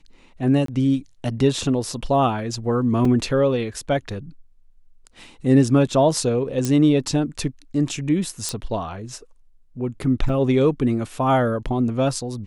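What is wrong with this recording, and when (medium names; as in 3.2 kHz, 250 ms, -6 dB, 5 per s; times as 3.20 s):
0.66–0.68 s: dropout 23 ms
3.05 s: dropout 2.9 ms
6.65 s: pop -10 dBFS
8.49 s: pop -10 dBFS
10.29 s: dropout 2.5 ms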